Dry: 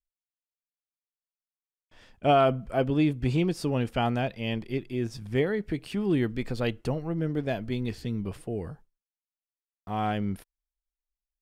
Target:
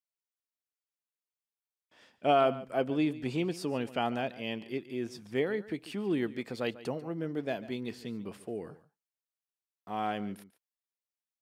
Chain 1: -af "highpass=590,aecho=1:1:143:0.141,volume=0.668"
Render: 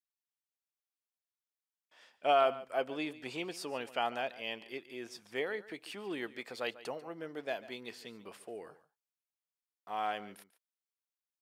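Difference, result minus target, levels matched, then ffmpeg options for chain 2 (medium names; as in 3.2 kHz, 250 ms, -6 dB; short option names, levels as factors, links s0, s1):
250 Hz band -7.5 dB
-af "highpass=220,aecho=1:1:143:0.141,volume=0.668"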